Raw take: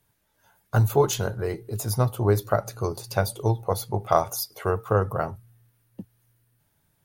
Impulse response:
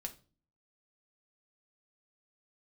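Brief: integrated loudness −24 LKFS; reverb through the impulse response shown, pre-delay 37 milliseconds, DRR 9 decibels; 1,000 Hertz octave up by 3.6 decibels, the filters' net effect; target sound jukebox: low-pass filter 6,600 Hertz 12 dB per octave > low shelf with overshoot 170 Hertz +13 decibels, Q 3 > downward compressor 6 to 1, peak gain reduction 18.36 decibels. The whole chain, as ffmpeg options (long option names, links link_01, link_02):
-filter_complex "[0:a]equalizer=frequency=1000:width_type=o:gain=5.5,asplit=2[link_01][link_02];[1:a]atrim=start_sample=2205,adelay=37[link_03];[link_02][link_03]afir=irnorm=-1:irlink=0,volume=-6.5dB[link_04];[link_01][link_04]amix=inputs=2:normalize=0,lowpass=6600,lowshelf=frequency=170:width_type=q:width=3:gain=13,acompressor=threshold=-15dB:ratio=6,volume=-3.5dB"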